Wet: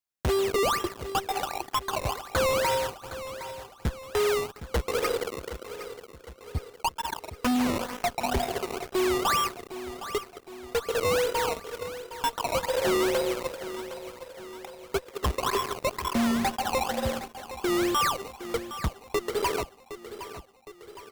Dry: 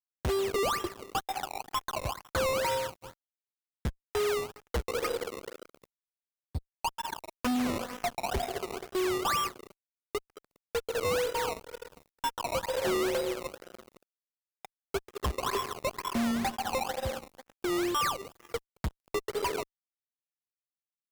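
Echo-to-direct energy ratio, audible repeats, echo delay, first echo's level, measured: −11.5 dB, 4, 763 ms, −13.0 dB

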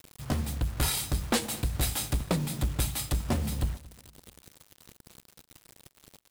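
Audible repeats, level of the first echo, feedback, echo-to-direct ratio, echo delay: 2, −22.0 dB, 44%, −21.0 dB, 224 ms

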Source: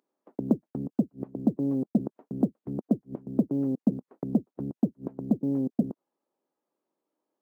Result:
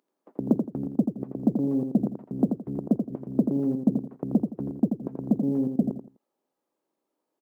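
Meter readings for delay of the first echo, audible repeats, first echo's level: 84 ms, 3, −6.0 dB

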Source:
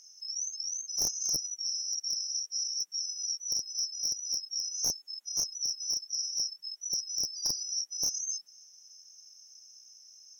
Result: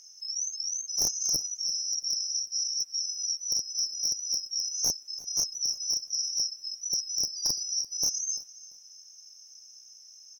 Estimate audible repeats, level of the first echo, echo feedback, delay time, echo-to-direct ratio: 2, −19.0 dB, 27%, 341 ms, −18.5 dB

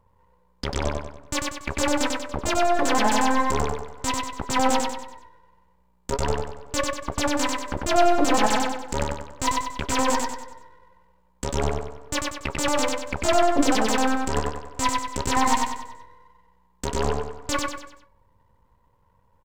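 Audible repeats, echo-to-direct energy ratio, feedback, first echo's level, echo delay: 5, −2.0 dB, 42%, −3.0 dB, 95 ms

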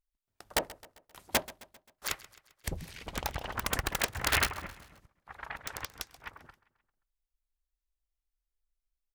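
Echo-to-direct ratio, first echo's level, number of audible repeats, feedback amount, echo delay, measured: −17.5 dB, −19.0 dB, 3, 52%, 132 ms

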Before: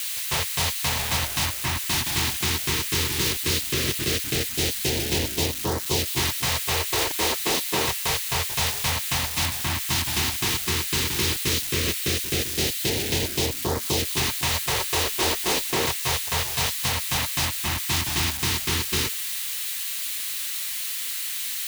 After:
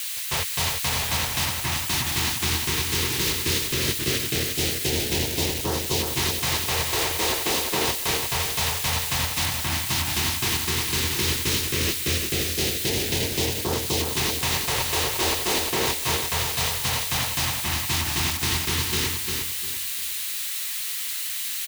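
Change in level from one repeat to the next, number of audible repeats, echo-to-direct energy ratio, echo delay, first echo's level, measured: −10.0 dB, 3, −4.5 dB, 351 ms, −5.0 dB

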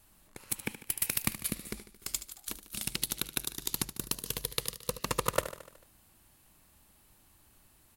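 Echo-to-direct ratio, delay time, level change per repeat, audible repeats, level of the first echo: −11.0 dB, 74 ms, −4.5 dB, 5, −13.0 dB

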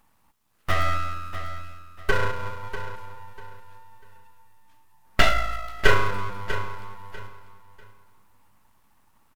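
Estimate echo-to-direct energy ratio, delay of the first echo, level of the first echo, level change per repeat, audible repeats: −11.5 dB, 644 ms, −12.0 dB, −11.5 dB, 2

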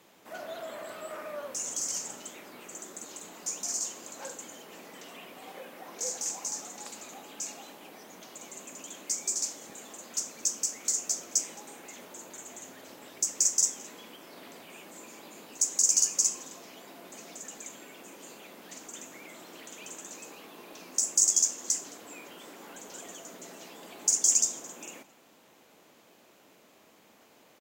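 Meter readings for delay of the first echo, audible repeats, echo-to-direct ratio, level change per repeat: 217 ms, 1, −23.5 dB, repeats not evenly spaced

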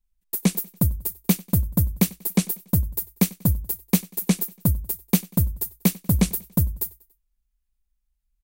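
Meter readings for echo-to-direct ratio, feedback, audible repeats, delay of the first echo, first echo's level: −22.5 dB, 49%, 2, 95 ms, −23.5 dB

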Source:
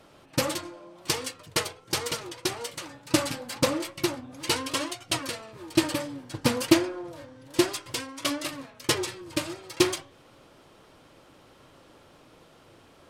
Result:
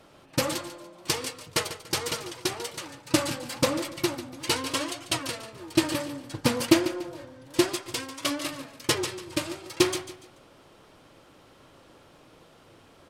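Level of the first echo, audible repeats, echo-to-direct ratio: −13.0 dB, 3, −12.5 dB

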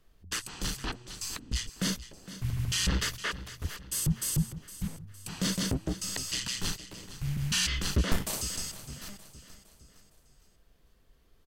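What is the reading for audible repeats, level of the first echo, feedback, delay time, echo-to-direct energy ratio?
4, −14.5 dB, 47%, 461 ms, −13.5 dB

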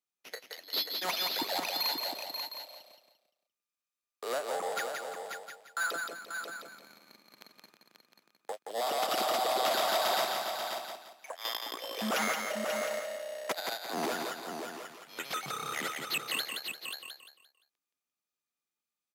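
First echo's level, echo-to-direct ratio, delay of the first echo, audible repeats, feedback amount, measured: −5.0 dB, −2.0 dB, 173 ms, 6, repeats not evenly spaced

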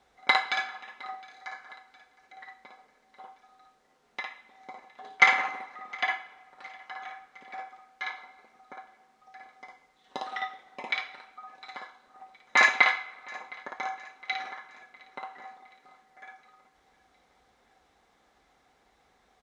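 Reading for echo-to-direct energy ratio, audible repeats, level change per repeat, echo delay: −21.5 dB, 3, −5.5 dB, 712 ms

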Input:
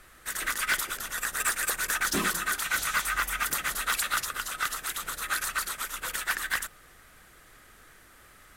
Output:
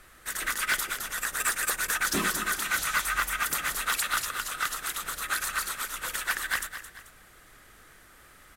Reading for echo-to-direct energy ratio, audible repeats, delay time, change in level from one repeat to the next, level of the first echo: −11.0 dB, 2, 218 ms, −7.5 dB, −11.5 dB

